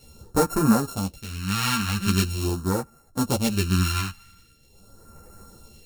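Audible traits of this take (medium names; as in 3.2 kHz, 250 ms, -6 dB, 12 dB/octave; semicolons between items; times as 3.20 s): a buzz of ramps at a fixed pitch in blocks of 32 samples; phasing stages 2, 0.43 Hz, lowest notch 480–3000 Hz; tremolo triangle 0.6 Hz, depth 75%; a shimmering, thickened sound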